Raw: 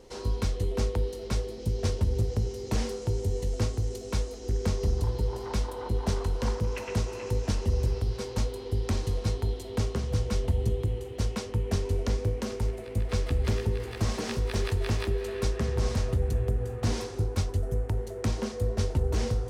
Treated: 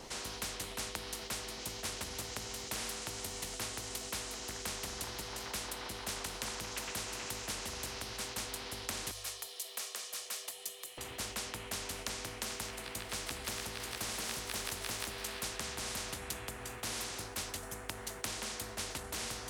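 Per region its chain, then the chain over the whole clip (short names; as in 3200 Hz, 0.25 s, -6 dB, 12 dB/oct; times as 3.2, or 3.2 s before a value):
9.11–10.98 HPF 490 Hz + differentiator + comb 1.7 ms, depth 37%
whole clip: notches 50/100 Hz; spectral compressor 4:1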